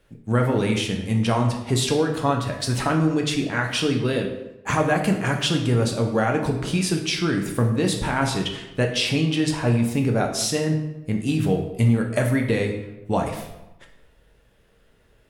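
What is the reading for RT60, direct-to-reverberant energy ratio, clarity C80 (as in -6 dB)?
0.95 s, 2.0 dB, 9.5 dB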